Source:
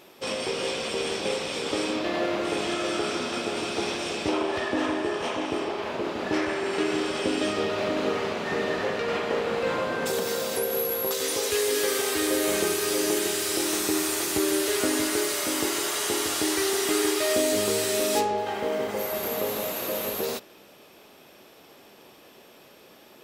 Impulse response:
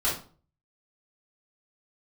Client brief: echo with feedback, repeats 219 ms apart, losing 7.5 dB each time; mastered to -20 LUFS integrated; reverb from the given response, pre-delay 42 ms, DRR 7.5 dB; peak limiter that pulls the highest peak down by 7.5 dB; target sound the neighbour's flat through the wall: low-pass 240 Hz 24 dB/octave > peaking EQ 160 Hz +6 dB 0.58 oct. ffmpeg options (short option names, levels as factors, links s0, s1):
-filter_complex "[0:a]alimiter=limit=0.126:level=0:latency=1,aecho=1:1:219|438|657|876|1095:0.422|0.177|0.0744|0.0312|0.0131,asplit=2[s0][s1];[1:a]atrim=start_sample=2205,adelay=42[s2];[s1][s2]afir=irnorm=-1:irlink=0,volume=0.126[s3];[s0][s3]amix=inputs=2:normalize=0,lowpass=f=240:w=0.5412,lowpass=f=240:w=1.3066,equalizer=f=160:t=o:w=0.58:g=6,volume=9.44"